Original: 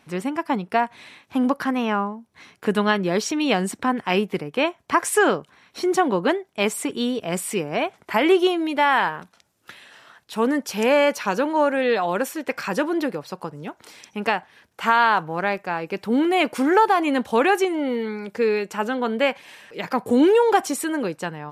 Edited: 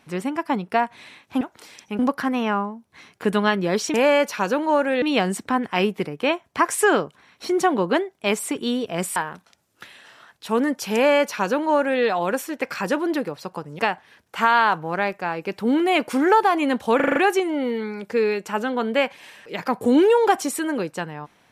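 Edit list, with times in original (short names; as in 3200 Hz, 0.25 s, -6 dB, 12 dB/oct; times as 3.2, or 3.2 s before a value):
7.5–9.03 cut
10.81–11.89 copy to 3.36
13.66–14.24 move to 1.41
17.41 stutter 0.04 s, 6 plays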